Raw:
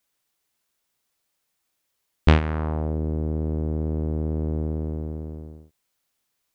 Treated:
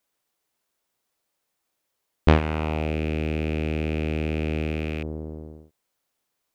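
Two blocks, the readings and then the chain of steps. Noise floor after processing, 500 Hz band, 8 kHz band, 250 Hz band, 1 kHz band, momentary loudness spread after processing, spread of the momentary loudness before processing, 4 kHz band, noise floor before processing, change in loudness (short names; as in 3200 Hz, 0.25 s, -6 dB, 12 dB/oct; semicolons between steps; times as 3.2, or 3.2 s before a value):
-79 dBFS, +2.5 dB, n/a, +0.5 dB, +2.0 dB, 14 LU, 14 LU, +1.5 dB, -77 dBFS, -0.5 dB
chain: rattling part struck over -32 dBFS, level -22 dBFS; bell 530 Hz +6 dB 2.6 oct; gain -3 dB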